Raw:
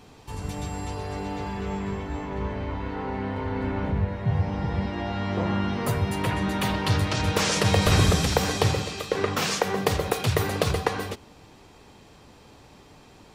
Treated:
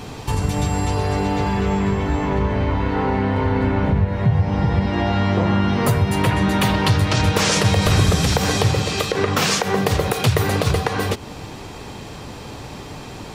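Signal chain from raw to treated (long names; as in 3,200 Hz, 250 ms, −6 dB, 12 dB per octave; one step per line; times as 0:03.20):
parametric band 120 Hz +3.5 dB 0.8 octaves
downward compressor 2.5 to 1, threshold −35 dBFS, peak gain reduction 14 dB
boost into a limiter +20.5 dB
level −4.5 dB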